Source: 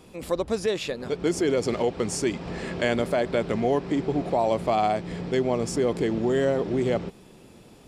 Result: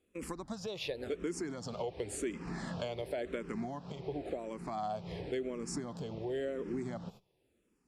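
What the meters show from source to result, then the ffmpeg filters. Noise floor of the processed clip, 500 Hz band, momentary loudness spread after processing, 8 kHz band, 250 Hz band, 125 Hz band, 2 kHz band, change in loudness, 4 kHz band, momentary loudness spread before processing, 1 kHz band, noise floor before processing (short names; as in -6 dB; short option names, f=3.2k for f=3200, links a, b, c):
-76 dBFS, -14.5 dB, 5 LU, -10.0 dB, -13.0 dB, -12.5 dB, -14.0 dB, -13.5 dB, -11.0 dB, 6 LU, -14.5 dB, -51 dBFS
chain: -filter_complex "[0:a]agate=range=-20dB:threshold=-41dB:ratio=16:detection=peak,acompressor=threshold=-29dB:ratio=6,asplit=2[a][b];[b]afreqshift=-0.93[c];[a][c]amix=inputs=2:normalize=1,volume=-3dB"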